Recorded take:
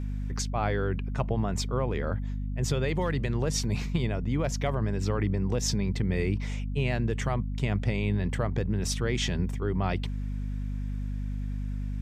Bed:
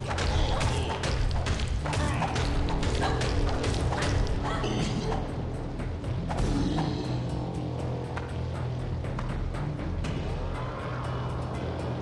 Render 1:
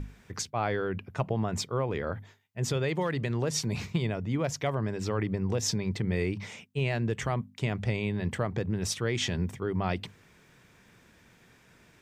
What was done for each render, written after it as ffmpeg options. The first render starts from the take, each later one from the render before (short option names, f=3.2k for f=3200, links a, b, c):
-af "bandreject=f=50:t=h:w=6,bandreject=f=100:t=h:w=6,bandreject=f=150:t=h:w=6,bandreject=f=200:t=h:w=6,bandreject=f=250:t=h:w=6"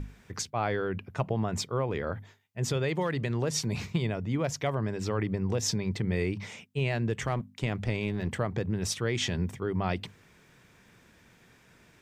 -filter_complex "[0:a]asettb=1/sr,asplit=3[a][b][c];[a]atrim=end=7.264[d];[b]atrim=start=7.26:end=8.28,asetpts=PTS-STARTPTS,afade=t=in:d=0.004:c=qsin,afade=t=out:st=1.016:d=0.004:c=qsin,aeval=exprs='clip(val(0),-1,0.0316)':c=same[e];[c]atrim=start=8.276[f];[d][e]acrossfade=d=0.004:c1=hsin:c2=qsin[g];[g][f]acrossfade=d=0.004:c1=qsin:c2=hsin"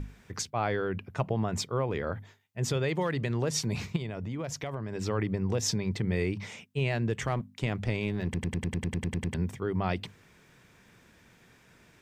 -filter_complex "[0:a]asettb=1/sr,asplit=3[a][b][c];[a]atrim=end=3.964[d];[b]atrim=start=3.96:end=4.95,asetpts=PTS-STARTPTS,afade=t=in:d=0.004:c=qsin,afade=t=out:st=0.986:d=0.004:c=qsin,acompressor=threshold=-31dB:ratio=6:attack=3.2:release=140:knee=1:detection=peak[e];[c]atrim=start=4.946[f];[d][e]acrossfade=d=0.004:c1=hsin:c2=qsin[g];[g][f]acrossfade=d=0.004:c1=qsin:c2=hsin,asplit=12[h][i][j][k][l][m][n][o][p][q][r][s];[h]atrim=end=8.342[t];[i]atrim=start=8.238:end=8.342[u];[j]atrim=start=8.238:end=8.342[v];[k]atrim=start=8.238:end=8.342[w];[l]atrim=start=8.238:end=8.342[x];[m]atrim=start=8.238:end=8.342[y];[n]atrim=start=8.238:end=8.342[z];[o]atrim=start=8.238:end=8.342[aa];[p]atrim=start=8.238:end=8.342[ab];[q]atrim=start=8.238:end=8.342[ac];[r]atrim=start=8.238:end=8.342[ad];[s]atrim=start=9.338[ae];[t][u]acrossfade=d=0.004:c1=hsin:c2=hsin[af];[af][v]acrossfade=d=0.004:c1=hsin:c2=hsin[ag];[ag][w]acrossfade=d=0.004:c1=hsin:c2=hsin[ah];[ah][x]acrossfade=d=0.004:c1=hsin:c2=hsin[ai];[ai][y]acrossfade=d=0.004:c1=hsin:c2=hsin[aj];[aj][z]acrossfade=d=0.004:c1=hsin:c2=hsin[ak];[ak][aa]acrossfade=d=0.004:c1=hsin:c2=hsin[al];[al][ab]acrossfade=d=0.004:c1=hsin:c2=hsin[am];[am][ac]acrossfade=d=0.004:c1=hsin:c2=hsin[an];[an][ad]acrossfade=d=0.004:c1=hsin:c2=hsin[ao];[ao][ae]acrossfade=d=0.004:c1=hsin:c2=hsin"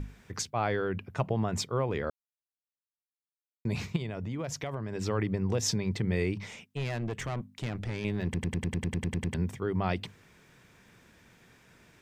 -filter_complex "[0:a]asettb=1/sr,asplit=3[a][b][c];[a]atrim=end=6.384[d];[b]atrim=start=6.38:end=8.05,asetpts=PTS-STARTPTS,afade=t=in:d=0.004:c=qsin,afade=t=out:st=1.666:d=0.004:c=qsin,aeval=exprs='(tanh(28.2*val(0)+0.35)-tanh(0.35))/28.2':c=same[e];[c]atrim=start=8.046[f];[d][e]acrossfade=d=0.004:c1=hsin:c2=qsin[g];[g][f]acrossfade=d=0.004:c1=qsin:c2=hsin,asplit=3[h][i][j];[h]atrim=end=2.1,asetpts=PTS-STARTPTS,afade=t=out:st=2.096:d=0.004:c=hsin[k];[i]atrim=start=2.1:end=3.65,asetpts=PTS-STARTPTS,volume=0[l];[j]atrim=start=3.65,asetpts=PTS-STARTPTS,afade=t=in:d=0.004:c=hsin[m];[k][l][m]concat=n=3:v=0:a=1"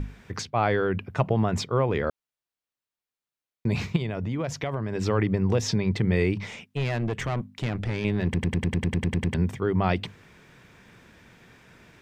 -filter_complex "[0:a]acrossover=split=4700[a][b];[a]acontrast=57[c];[b]alimiter=level_in=7.5dB:limit=-24dB:level=0:latency=1:release=405,volume=-7.5dB[d];[c][d]amix=inputs=2:normalize=0"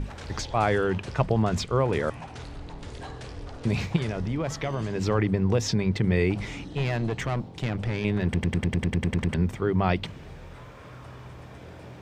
-filter_complex "[1:a]volume=-12dB[a];[0:a][a]amix=inputs=2:normalize=0"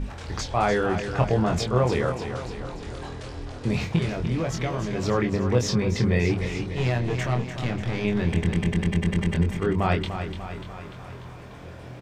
-filter_complex "[0:a]asplit=2[a][b];[b]adelay=24,volume=-4.5dB[c];[a][c]amix=inputs=2:normalize=0,aecho=1:1:295|590|885|1180|1475|1770|2065:0.355|0.209|0.124|0.0729|0.043|0.0254|0.015"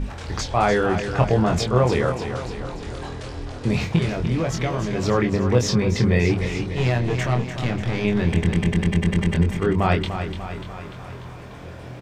-af "volume=3.5dB"